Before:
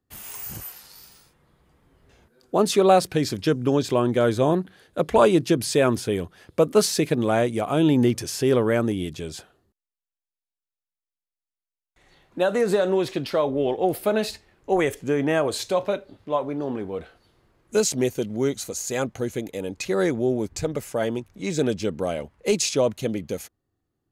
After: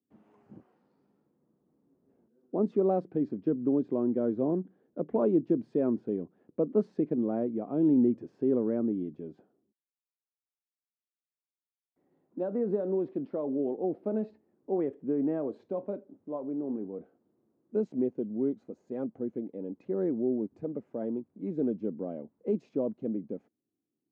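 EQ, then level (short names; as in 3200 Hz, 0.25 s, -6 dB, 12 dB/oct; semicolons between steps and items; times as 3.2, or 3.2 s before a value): ladder band-pass 280 Hz, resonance 50%; bell 240 Hz -2.5 dB 0.34 oct; +4.0 dB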